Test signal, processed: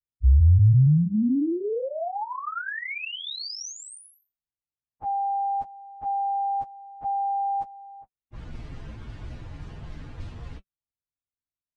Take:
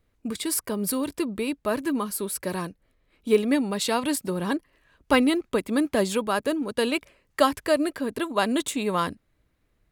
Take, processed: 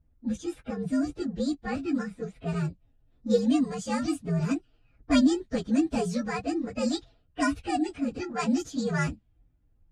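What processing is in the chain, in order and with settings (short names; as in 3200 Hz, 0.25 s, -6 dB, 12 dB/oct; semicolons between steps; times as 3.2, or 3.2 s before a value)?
inharmonic rescaling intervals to 122%; LPF 11000 Hz 24 dB/oct; tone controls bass +13 dB, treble +4 dB; notch comb 190 Hz; low-pass opened by the level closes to 1500 Hz, open at -20 dBFS; gain -2.5 dB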